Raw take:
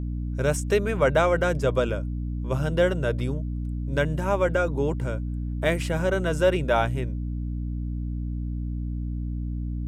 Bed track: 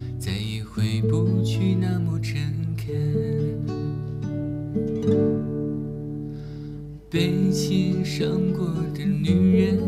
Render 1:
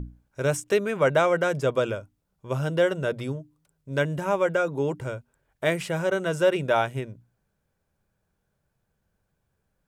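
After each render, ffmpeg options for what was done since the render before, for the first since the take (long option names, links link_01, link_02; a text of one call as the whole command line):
ffmpeg -i in.wav -af "bandreject=frequency=60:width_type=h:width=6,bandreject=frequency=120:width_type=h:width=6,bandreject=frequency=180:width_type=h:width=6,bandreject=frequency=240:width_type=h:width=6,bandreject=frequency=300:width_type=h:width=6" out.wav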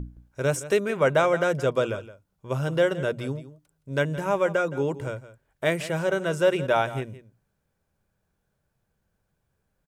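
ffmpeg -i in.wav -af "aecho=1:1:168:0.168" out.wav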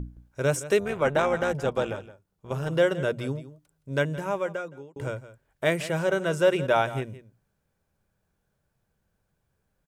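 ffmpeg -i in.wav -filter_complex "[0:a]asplit=3[link_01][link_02][link_03];[link_01]afade=type=out:start_time=0.79:duration=0.02[link_04];[link_02]tremolo=f=290:d=0.621,afade=type=in:start_time=0.79:duration=0.02,afade=type=out:start_time=2.69:duration=0.02[link_05];[link_03]afade=type=in:start_time=2.69:duration=0.02[link_06];[link_04][link_05][link_06]amix=inputs=3:normalize=0,asplit=2[link_07][link_08];[link_07]atrim=end=4.96,asetpts=PTS-STARTPTS,afade=type=out:start_time=3.93:duration=1.03[link_09];[link_08]atrim=start=4.96,asetpts=PTS-STARTPTS,afade=type=in:duration=0.004:curve=hsin[link_10];[link_09][link_10]concat=n=2:v=0:a=1" out.wav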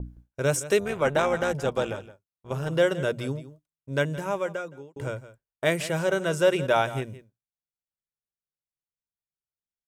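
ffmpeg -i in.wav -af "agate=range=-33dB:threshold=-43dB:ratio=3:detection=peak,adynamicequalizer=threshold=0.0112:dfrequency=3200:dqfactor=0.7:tfrequency=3200:tqfactor=0.7:attack=5:release=100:ratio=0.375:range=2:mode=boostabove:tftype=highshelf" out.wav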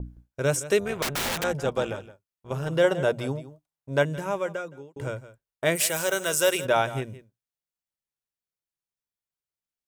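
ffmpeg -i in.wav -filter_complex "[0:a]asettb=1/sr,asplit=3[link_01][link_02][link_03];[link_01]atrim=end=1.024[link_04];[link_02]atrim=start=1.02:end=1.44,asetpts=PTS-STARTPTS,afade=type=in:duration=0.004:curve=qsin,afade=type=out:start_time=0.416:duration=0.004:curve=qsin,aeval=exprs='(mod(14.1*val(0)+1,2)-1)/14.1':channel_layout=same[link_05];[link_03]atrim=start=1.436[link_06];[link_04][link_05]acrossfade=duration=0.004:curve1=hsin:curve2=qsin[link_07];[link_07][link_06]acrossfade=duration=0.004:curve1=qsin:curve2=hsin,asettb=1/sr,asplit=3[link_08][link_09][link_10];[link_08]atrim=end=2.844[link_11];[link_09]atrim=start=2.84:end=4.03,asetpts=PTS-STARTPTS,afade=type=in:duration=0.004:curve=qsin,afade=type=out:start_time=1.186:duration=0.004:curve=qsin,equalizer=frequency=780:width_type=o:width=0.77:gain=9.5[link_12];[link_10]atrim=start=4.026[link_13];[link_11][link_12]acrossfade=duration=0.004:curve1=hsin:curve2=qsin[link_14];[link_14][link_13]acrossfade=duration=0.004:curve1=qsin:curve2=hsin,asplit=3[link_15][link_16][link_17];[link_15]afade=type=out:start_time=5.75:duration=0.02[link_18];[link_16]aemphasis=mode=production:type=riaa,afade=type=in:start_time=5.75:duration=0.02,afade=type=out:start_time=6.64:duration=0.02[link_19];[link_17]afade=type=in:start_time=6.64:duration=0.02[link_20];[link_18][link_19][link_20]amix=inputs=3:normalize=0" out.wav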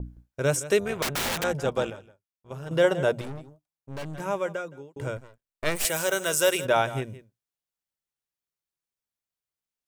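ffmpeg -i in.wav -filter_complex "[0:a]asettb=1/sr,asplit=3[link_01][link_02][link_03];[link_01]atrim=end=3.214[link_04];[link_02]atrim=start=3.21:end=4.2,asetpts=PTS-STARTPTS,afade=type=in:duration=0.004:curve=qsin,afade=type=out:start_time=0.986:duration=0.004:curve=qsin,aeval=exprs='(tanh(50.1*val(0)+0.75)-tanh(0.75))/50.1':channel_layout=same[link_05];[link_03]atrim=start=4.196[link_06];[link_04][link_05]acrossfade=duration=0.004:curve1=hsin:curve2=qsin[link_07];[link_07][link_06]acrossfade=duration=0.004:curve1=qsin:curve2=hsin,asettb=1/sr,asplit=3[link_08][link_09][link_10];[link_08]atrim=end=5.174[link_11];[link_09]atrim=start=5.17:end=5.85,asetpts=PTS-STARTPTS,afade=type=in:duration=0.004:curve=qsin,afade=type=out:start_time=0.676:duration=0.004:curve=qsin,aeval=exprs='max(val(0),0)':channel_layout=same[link_12];[link_10]atrim=start=5.846[link_13];[link_11][link_12]acrossfade=duration=0.004:curve1=hsin:curve2=qsin[link_14];[link_14][link_13]acrossfade=duration=0.004:curve1=qsin:curve2=hsin,asplit=3[link_15][link_16][link_17];[link_15]atrim=end=1.902[link_18];[link_16]atrim=start=1.898:end=2.712,asetpts=PTS-STARTPTS,volume=-7.5dB[link_19];[link_17]atrim=start=2.708[link_20];[link_18][link_19]acrossfade=duration=0.004:curve1=hsin:curve2=hsin[link_21];[link_21][link_20]acrossfade=duration=0.004:curve1=hsin:curve2=hsin" out.wav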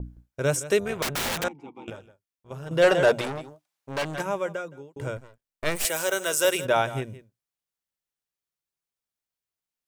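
ffmpeg -i in.wav -filter_complex "[0:a]asettb=1/sr,asplit=3[link_01][link_02][link_03];[link_01]atrim=end=1.484[link_04];[link_02]atrim=start=1.48:end=1.88,asetpts=PTS-STARTPTS,afade=type=in:duration=0.004:curve=qsin,afade=type=out:start_time=0.396:duration=0.004:curve=qsin,asplit=3[link_05][link_06][link_07];[link_05]bandpass=frequency=300:width_type=q:width=8,volume=0dB[link_08];[link_06]bandpass=frequency=870:width_type=q:width=8,volume=-6dB[link_09];[link_07]bandpass=frequency=2240:width_type=q:width=8,volume=-9dB[link_10];[link_08][link_09][link_10]amix=inputs=3:normalize=0[link_11];[link_03]atrim=start=1.876[link_12];[link_04][link_11]acrossfade=duration=0.004:curve1=hsin:curve2=qsin[link_13];[link_13][link_12]acrossfade=duration=0.004:curve1=qsin:curve2=hsin,asplit=3[link_14][link_15][link_16];[link_14]afade=type=out:start_time=2.81:duration=0.02[link_17];[link_15]asplit=2[link_18][link_19];[link_19]highpass=frequency=720:poles=1,volume=18dB,asoftclip=type=tanh:threshold=-9dB[link_20];[link_18][link_20]amix=inputs=2:normalize=0,lowpass=frequency=6800:poles=1,volume=-6dB,afade=type=in:start_time=2.81:duration=0.02,afade=type=out:start_time=4.21:duration=0.02[link_21];[link_16]afade=type=in:start_time=4.21:duration=0.02[link_22];[link_17][link_21][link_22]amix=inputs=3:normalize=0,asettb=1/sr,asplit=3[link_23][link_24][link_25];[link_23]atrim=end=5.864[link_26];[link_24]atrim=start=5.86:end=6.45,asetpts=PTS-STARTPTS,afade=type=in:duration=0.004:curve=qsin,afade=type=out:start_time=0.586:duration=0.004:curve=qsin,highpass=230[link_27];[link_25]atrim=start=6.446[link_28];[link_26][link_27]acrossfade=duration=0.004:curve1=hsin:curve2=qsin[link_29];[link_29][link_28]acrossfade=duration=0.004:curve1=qsin:curve2=hsin" out.wav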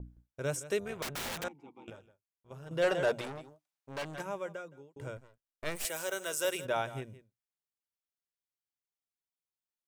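ffmpeg -i in.wav -af "volume=-10dB" out.wav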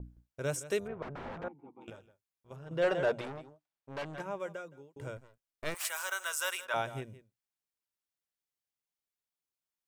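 ffmpeg -i in.wav -filter_complex "[0:a]asplit=3[link_01][link_02][link_03];[link_01]afade=type=out:start_time=0.86:duration=0.02[link_04];[link_02]lowpass=1200,afade=type=in:start_time=0.86:duration=0.02,afade=type=out:start_time=1.8:duration=0.02[link_05];[link_03]afade=type=in:start_time=1.8:duration=0.02[link_06];[link_04][link_05][link_06]amix=inputs=3:normalize=0,asettb=1/sr,asplit=3[link_07][link_08][link_09];[link_07]atrim=end=2.564[link_10];[link_08]atrim=start=2.56:end=4.4,asetpts=PTS-STARTPTS,afade=type=in:duration=0.004:curve=qsin,afade=type=out:start_time=1.836:duration=0.004:curve=qsin,lowpass=frequency=2800:poles=1[link_11];[link_09]atrim=start=4.396[link_12];[link_10][link_11]acrossfade=duration=0.004:curve1=hsin:curve2=qsin[link_13];[link_13][link_12]acrossfade=duration=0.004:curve1=qsin:curve2=hsin,asettb=1/sr,asplit=3[link_14][link_15][link_16];[link_14]atrim=end=5.744[link_17];[link_15]atrim=start=5.74:end=6.74,asetpts=PTS-STARTPTS,afade=type=in:duration=0.004:curve=qsin,afade=type=out:start_time=0.996:duration=0.004:curve=qsin,highpass=frequency=1100:width_type=q:width=2.1[link_18];[link_16]atrim=start=6.736[link_19];[link_17][link_18]acrossfade=duration=0.004:curve1=hsin:curve2=qsin[link_20];[link_20][link_19]acrossfade=duration=0.004:curve1=qsin:curve2=hsin" out.wav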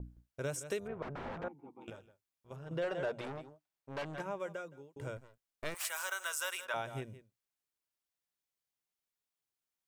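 ffmpeg -i in.wav -af "acompressor=threshold=-34dB:ratio=4" out.wav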